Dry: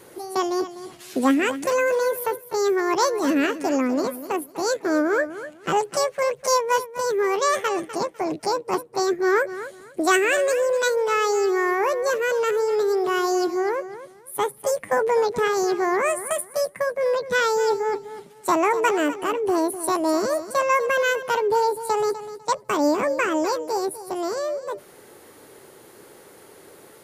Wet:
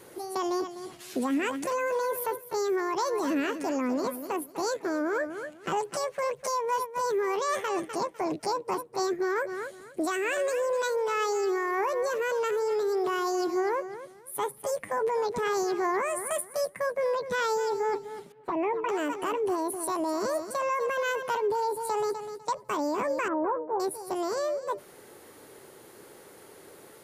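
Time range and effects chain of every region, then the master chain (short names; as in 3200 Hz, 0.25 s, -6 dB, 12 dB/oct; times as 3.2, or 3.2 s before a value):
18.32–18.89 envelope flanger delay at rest 7.9 ms, full sweep at -15 dBFS + air absorption 410 m
23.28–23.8 inverse Chebyshev low-pass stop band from 3900 Hz, stop band 50 dB + three-band expander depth 70%
whole clip: dynamic EQ 1000 Hz, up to +7 dB, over -41 dBFS, Q 6.8; limiter -18 dBFS; gain -3 dB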